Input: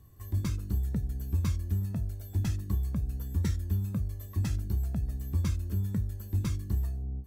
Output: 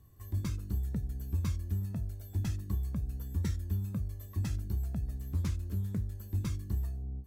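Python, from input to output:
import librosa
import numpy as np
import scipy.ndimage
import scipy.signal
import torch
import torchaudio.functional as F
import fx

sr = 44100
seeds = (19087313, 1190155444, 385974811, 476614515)

y = fx.doppler_dist(x, sr, depth_ms=0.25, at=(5.15, 6.15))
y = y * librosa.db_to_amplitude(-3.5)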